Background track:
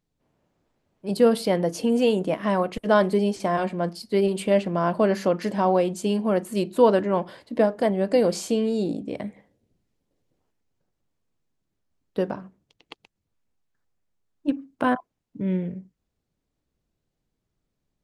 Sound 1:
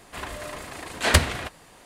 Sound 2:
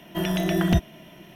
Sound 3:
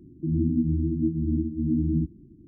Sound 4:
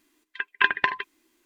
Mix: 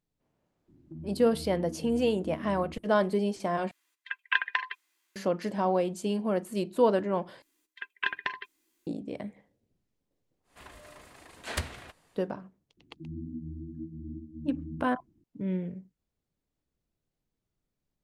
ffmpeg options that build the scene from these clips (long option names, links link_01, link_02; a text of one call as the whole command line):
ffmpeg -i bed.wav -i cue0.wav -i cue1.wav -i cue2.wav -i cue3.wav -filter_complex "[3:a]asplit=2[link_01][link_02];[4:a]asplit=2[link_03][link_04];[0:a]volume=-6dB[link_05];[link_01]acompressor=threshold=-28dB:ratio=6:attack=3.2:release=140:knee=1:detection=peak[link_06];[link_03]highpass=970[link_07];[link_04]highshelf=frequency=4200:gain=9[link_08];[link_05]asplit=3[link_09][link_10][link_11];[link_09]atrim=end=3.714[link_12];[link_07]atrim=end=1.45,asetpts=PTS-STARTPTS,volume=-5dB[link_13];[link_10]atrim=start=5.156:end=7.424[link_14];[link_08]atrim=end=1.45,asetpts=PTS-STARTPTS,volume=-11dB[link_15];[link_11]atrim=start=8.866[link_16];[link_06]atrim=end=2.47,asetpts=PTS-STARTPTS,volume=-11dB,afade=type=in:duration=0.004:curve=hsin,afade=type=out:start_time=2.466:duration=0.004:curve=hsin,adelay=680[link_17];[1:a]atrim=end=1.85,asetpts=PTS-STARTPTS,volume=-15dB,afade=type=in:duration=0.1,afade=type=out:start_time=1.75:duration=0.1,adelay=10430[link_18];[link_02]atrim=end=2.47,asetpts=PTS-STARTPTS,volume=-15.5dB,afade=type=in:duration=0.004:curve=hsin,afade=type=out:start_time=2.466:duration=0.004:curve=hsin,adelay=12770[link_19];[link_12][link_13]acrossfade=duration=0.004:curve1=hsin:curve2=hsin[link_20];[link_20][link_14]acrossfade=duration=0.004:curve1=hsin:curve2=hsin[link_21];[link_21][link_15]acrossfade=duration=0.004:curve1=hsin:curve2=hsin[link_22];[link_22][link_16]acrossfade=duration=0.004:curve1=hsin:curve2=hsin[link_23];[link_23][link_17][link_18][link_19]amix=inputs=4:normalize=0" out.wav